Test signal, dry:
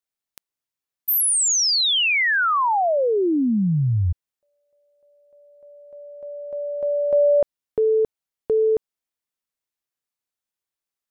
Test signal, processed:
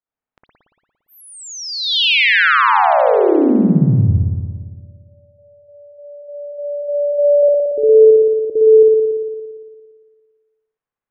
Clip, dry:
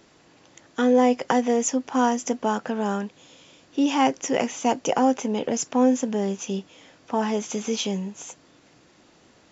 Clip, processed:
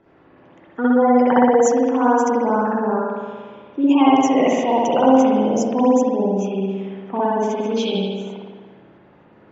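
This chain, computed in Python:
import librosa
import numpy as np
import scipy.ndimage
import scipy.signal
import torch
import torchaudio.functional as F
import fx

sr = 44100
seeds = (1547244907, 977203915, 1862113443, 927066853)

y = fx.spec_gate(x, sr, threshold_db=-20, keep='strong')
y = fx.rev_spring(y, sr, rt60_s=1.7, pass_ms=(57,), chirp_ms=30, drr_db=-7.5)
y = fx.env_lowpass(y, sr, base_hz=1700.0, full_db=-8.5)
y = y * librosa.db_to_amplitude(-1.0)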